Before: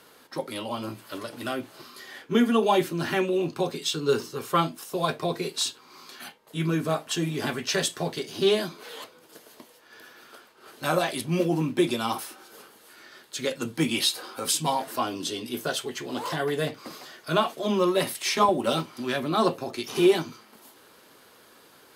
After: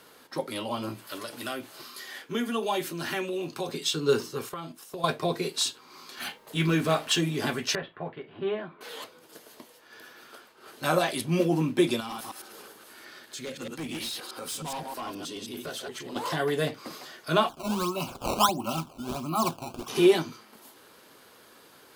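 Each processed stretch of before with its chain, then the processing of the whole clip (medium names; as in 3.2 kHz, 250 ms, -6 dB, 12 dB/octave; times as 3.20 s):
1.07–3.69 s: compression 1.5:1, threshold -34 dBFS + tilt EQ +1.5 dB/octave
4.49–5.04 s: gate -38 dBFS, range -7 dB + compression 10:1, threshold -33 dBFS
6.17–7.21 s: companding laws mixed up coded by mu + dynamic bell 2.7 kHz, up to +6 dB, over -44 dBFS, Q 0.77
7.75–8.81 s: Gaussian low-pass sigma 4.3 samples + peaking EQ 260 Hz -9 dB 2.9 oct
12.00–16.16 s: chunks repeated in reverse 105 ms, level -3 dB + hard clipper -23.5 dBFS + compression 2:1, threshold -40 dBFS
17.49–19.88 s: static phaser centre 2.4 kHz, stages 8 + decimation with a swept rate 15×, swing 160% 1.5 Hz + Butterworth band-stop 1.9 kHz, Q 2.1
whole clip: none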